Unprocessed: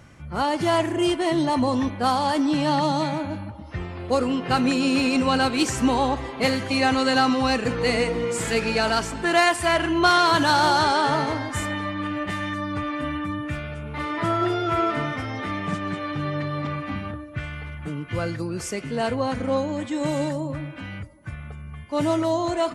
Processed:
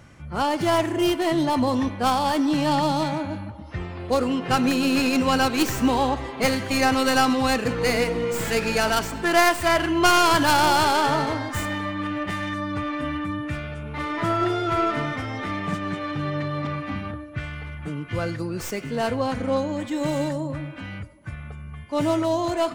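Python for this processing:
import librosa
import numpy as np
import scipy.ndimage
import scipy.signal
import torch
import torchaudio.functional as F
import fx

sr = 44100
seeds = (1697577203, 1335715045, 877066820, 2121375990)

p1 = fx.tracing_dist(x, sr, depth_ms=0.13)
y = p1 + fx.echo_thinned(p1, sr, ms=98, feedback_pct=51, hz=420.0, wet_db=-22.5, dry=0)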